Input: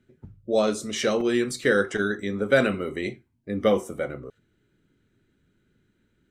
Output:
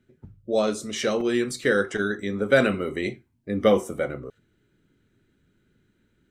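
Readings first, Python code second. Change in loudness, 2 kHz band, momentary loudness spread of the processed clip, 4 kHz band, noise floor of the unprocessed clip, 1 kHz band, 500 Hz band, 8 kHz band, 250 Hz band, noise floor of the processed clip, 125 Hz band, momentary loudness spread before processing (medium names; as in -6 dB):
+0.5 dB, 0.0 dB, 12 LU, 0.0 dB, -70 dBFS, +0.5 dB, +0.5 dB, -0.5 dB, +0.5 dB, -69 dBFS, +1.0 dB, 12 LU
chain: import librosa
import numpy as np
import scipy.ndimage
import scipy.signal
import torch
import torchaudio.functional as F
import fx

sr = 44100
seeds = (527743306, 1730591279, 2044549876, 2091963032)

y = fx.rider(x, sr, range_db=10, speed_s=2.0)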